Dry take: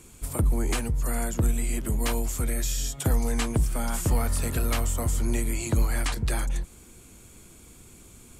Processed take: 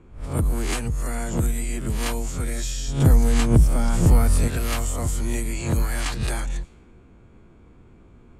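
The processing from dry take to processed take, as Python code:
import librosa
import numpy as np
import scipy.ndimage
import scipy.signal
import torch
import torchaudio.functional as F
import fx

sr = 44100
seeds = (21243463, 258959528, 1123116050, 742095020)

y = fx.spec_swells(x, sr, rise_s=0.45)
y = fx.env_lowpass(y, sr, base_hz=1300.0, full_db=-19.0)
y = fx.low_shelf(y, sr, hz=450.0, db=8.0, at=(2.88, 4.48))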